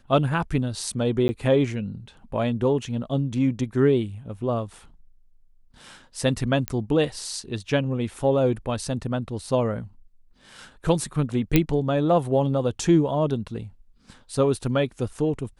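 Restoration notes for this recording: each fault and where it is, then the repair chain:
1.28–1.29 s: dropout 10 ms
6.68 s: pop -10 dBFS
11.56 s: pop -4 dBFS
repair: de-click; interpolate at 1.28 s, 10 ms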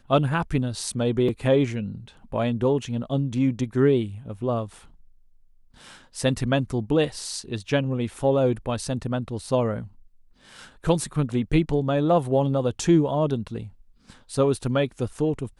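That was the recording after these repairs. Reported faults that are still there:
nothing left

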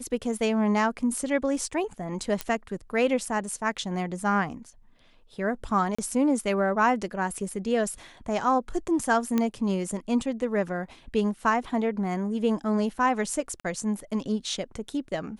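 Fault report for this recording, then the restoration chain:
2.41 s: pop -12 dBFS
5.95–5.99 s: dropout 35 ms
9.38 s: pop -12 dBFS
13.60–13.64 s: dropout 45 ms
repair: de-click; interpolate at 5.95 s, 35 ms; interpolate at 13.60 s, 45 ms

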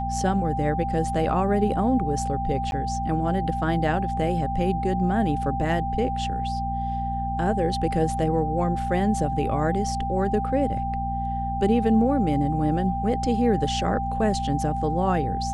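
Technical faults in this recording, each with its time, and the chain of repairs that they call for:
hum 60 Hz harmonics 4 -30 dBFS
whine 790 Hz -27 dBFS
2.71–2.72 s: dropout 11 ms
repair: de-hum 60 Hz, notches 4; band-stop 790 Hz, Q 30; interpolate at 2.71 s, 11 ms

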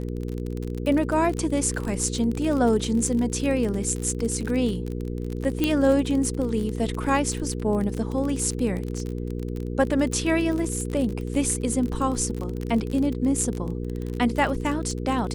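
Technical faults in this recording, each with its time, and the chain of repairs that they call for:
crackle 35 per s -27 dBFS
hum 60 Hz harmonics 8 -30 dBFS
5.64 s: pop -9 dBFS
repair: de-click; de-hum 60 Hz, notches 8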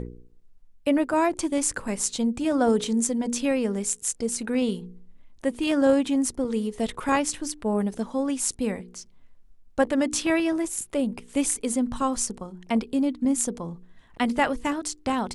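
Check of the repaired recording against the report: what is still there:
5.64 s: pop

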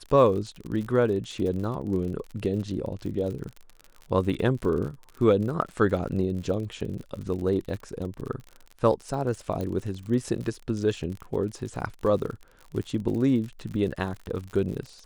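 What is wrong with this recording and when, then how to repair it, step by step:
crackle 51 per s -34 dBFS
9.61 s: pop -20 dBFS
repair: de-click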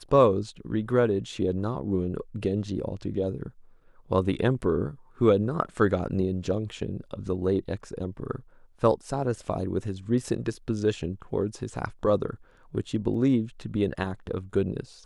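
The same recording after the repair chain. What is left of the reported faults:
nothing left

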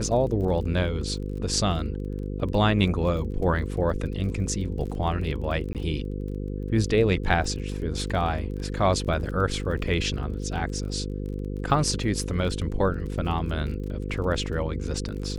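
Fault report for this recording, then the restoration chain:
buzz 50 Hz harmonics 10 -31 dBFS
crackle 26 per s -35 dBFS
5.73–5.75 s: dropout 18 ms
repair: de-click; de-hum 50 Hz, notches 10; interpolate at 5.73 s, 18 ms

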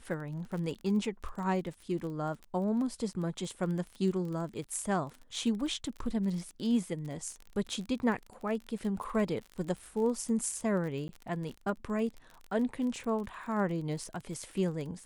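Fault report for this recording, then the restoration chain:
crackle 33 per s -38 dBFS
11.08–11.09 s: dropout 11 ms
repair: de-click; interpolate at 11.08 s, 11 ms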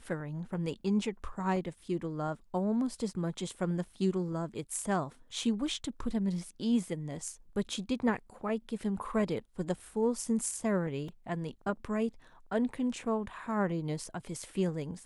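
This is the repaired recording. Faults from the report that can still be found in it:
nothing left

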